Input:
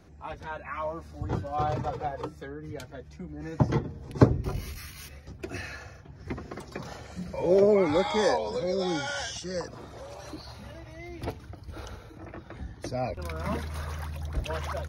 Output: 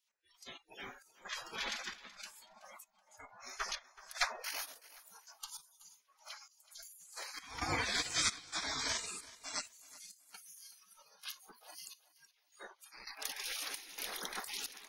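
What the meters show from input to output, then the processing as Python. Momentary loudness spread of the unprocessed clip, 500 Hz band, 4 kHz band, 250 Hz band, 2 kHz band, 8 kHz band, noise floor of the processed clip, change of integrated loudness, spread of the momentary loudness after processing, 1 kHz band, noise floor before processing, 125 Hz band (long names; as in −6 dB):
20 LU, −25.0 dB, +1.0 dB, −23.0 dB, −2.5 dB, +4.5 dB, −74 dBFS, −10.0 dB, 20 LU, −12.0 dB, −48 dBFS, −25.0 dB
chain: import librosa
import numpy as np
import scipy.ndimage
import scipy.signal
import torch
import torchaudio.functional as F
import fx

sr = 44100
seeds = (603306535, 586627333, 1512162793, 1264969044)

y = fx.spec_gate(x, sr, threshold_db=-30, keep='weak')
y = fx.noise_reduce_blind(y, sr, reduce_db=20)
y = fx.step_gate(y, sr, bpm=132, pattern='x..xxxxx', floor_db=-12.0, edge_ms=4.5)
y = fx.echo_feedback(y, sr, ms=376, feedback_pct=27, wet_db=-19.0)
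y = y * 10.0 ** (11.0 / 20.0)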